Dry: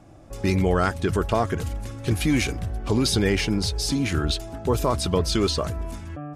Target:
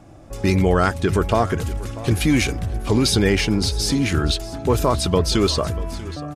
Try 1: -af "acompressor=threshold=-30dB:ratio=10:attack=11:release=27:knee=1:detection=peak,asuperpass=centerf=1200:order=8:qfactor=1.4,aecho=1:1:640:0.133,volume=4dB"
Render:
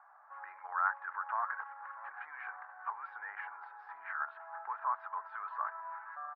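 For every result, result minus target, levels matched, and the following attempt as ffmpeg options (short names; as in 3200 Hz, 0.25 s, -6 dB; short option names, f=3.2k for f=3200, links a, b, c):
compressor: peak gain reduction +12 dB; 1000 Hz band +10.0 dB
-af "asuperpass=centerf=1200:order=8:qfactor=1.4,aecho=1:1:640:0.133,volume=4dB"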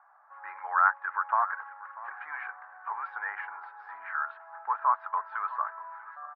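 1000 Hz band +9.5 dB
-af "aecho=1:1:640:0.133,volume=4dB"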